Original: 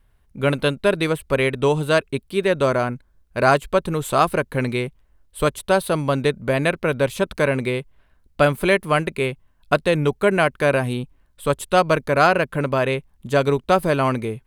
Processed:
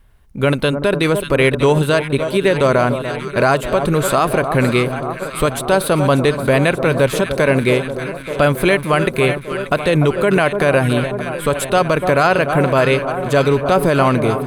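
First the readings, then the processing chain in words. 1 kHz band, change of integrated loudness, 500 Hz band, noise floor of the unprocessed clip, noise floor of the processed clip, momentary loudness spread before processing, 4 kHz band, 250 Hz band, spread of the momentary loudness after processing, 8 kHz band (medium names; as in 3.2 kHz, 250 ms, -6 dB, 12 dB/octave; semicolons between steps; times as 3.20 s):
+3.5 dB, +4.5 dB, +5.0 dB, -60 dBFS, -29 dBFS, 8 LU, +5.0 dB, +6.5 dB, 6 LU, +7.0 dB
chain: on a send: echo whose repeats swap between lows and highs 293 ms, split 1.2 kHz, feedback 82%, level -12 dB; on the sum: loudness maximiser +11 dB; trim -3 dB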